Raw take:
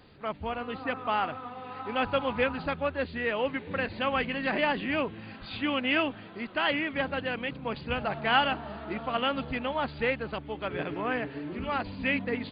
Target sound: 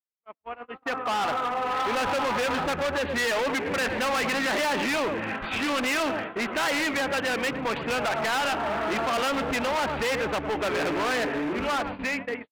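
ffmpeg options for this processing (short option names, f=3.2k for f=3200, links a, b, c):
-filter_complex "[0:a]asettb=1/sr,asplit=3[a][b][c];[a]atrim=end=6.714[d];[b]atrim=start=6.71:end=8.8,asetpts=PTS-STARTPTS,afade=t=in:d=0.004:c=qsin,afade=t=out:st=2.086:d=0.004:c=qsin,acrossover=split=82|1500[e][f][g];[e]acompressor=threshold=-58dB:ratio=4[h];[f]acompressor=threshold=-34dB:ratio=4[i];[g]acompressor=threshold=-35dB:ratio=4[j];[h][i][j]amix=inputs=3:normalize=0[k];[c]atrim=start=8.796[l];[d][k]acrossfade=d=0.004:c1=hsin:c2=qsin[m];[m][l]acrossfade=d=0.004:c1=qsin:c2=hsin,asplit=2[n][o];[o]adelay=109,lowpass=f=1.1k:p=1,volume=-15dB,asplit=2[p][q];[q]adelay=109,lowpass=f=1.1k:p=1,volume=0.27,asplit=2[r][s];[s]adelay=109,lowpass=f=1.1k:p=1,volume=0.27[t];[n][p][r][t]amix=inputs=4:normalize=0,alimiter=limit=-22.5dB:level=0:latency=1:release=47,dynaudnorm=f=140:g=17:m=16dB,acrusher=bits=4:mode=log:mix=0:aa=0.000001,lowpass=f=2.5k:w=0.5412,lowpass=f=2.5k:w=1.3066,asoftclip=type=tanh:threshold=-12.5dB,agate=range=-55dB:threshold=-29dB:ratio=16:detection=peak,equalizer=f=130:w=0.7:g=-9,volume=25.5dB,asoftclip=hard,volume=-25.5dB,lowshelf=f=180:g=-8.5,volume=2dB"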